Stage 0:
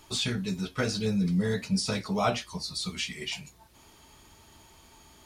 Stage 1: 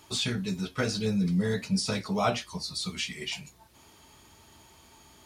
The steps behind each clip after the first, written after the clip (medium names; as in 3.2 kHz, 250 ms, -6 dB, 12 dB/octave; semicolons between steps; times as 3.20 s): high-pass 56 Hz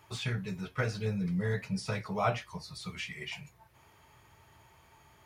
graphic EQ 125/250/500/1000/2000/4000/8000 Hz +9/-8/+3/+3/+6/-6/-6 dB; trim -6 dB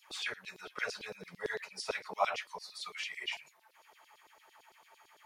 LFO high-pass saw down 8.9 Hz 390–4900 Hz; trim -1.5 dB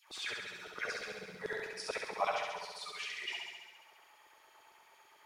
flutter echo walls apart 11.6 m, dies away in 1.3 s; trim -3.5 dB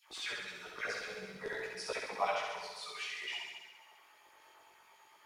chorus voices 2, 0.56 Hz, delay 18 ms, depth 2.9 ms; trim +3 dB